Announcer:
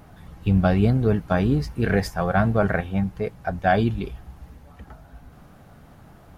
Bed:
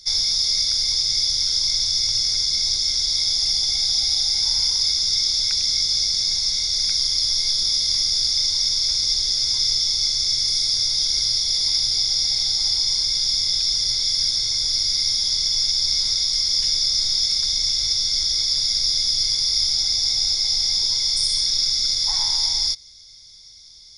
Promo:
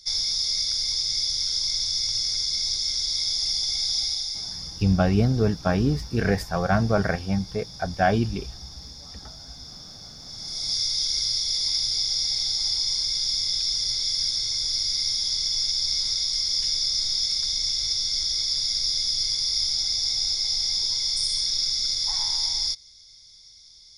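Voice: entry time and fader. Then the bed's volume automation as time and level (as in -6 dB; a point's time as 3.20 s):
4.35 s, -1.5 dB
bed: 4.02 s -5 dB
4.99 s -22.5 dB
10.21 s -22.5 dB
10.75 s -4.5 dB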